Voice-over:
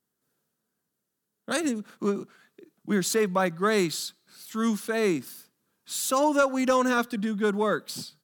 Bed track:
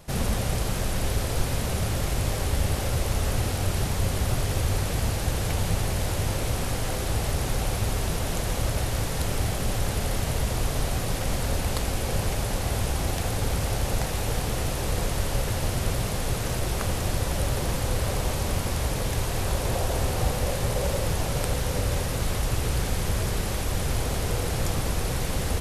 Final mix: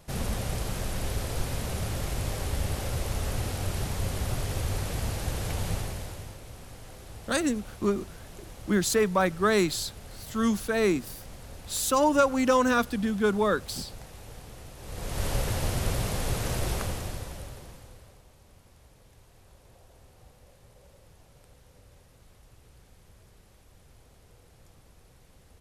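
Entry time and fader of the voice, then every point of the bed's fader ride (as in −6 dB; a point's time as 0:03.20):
5.80 s, +0.5 dB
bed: 0:05.74 −5 dB
0:06.40 −18 dB
0:14.76 −18 dB
0:15.25 −2 dB
0:16.72 −2 dB
0:18.26 −30 dB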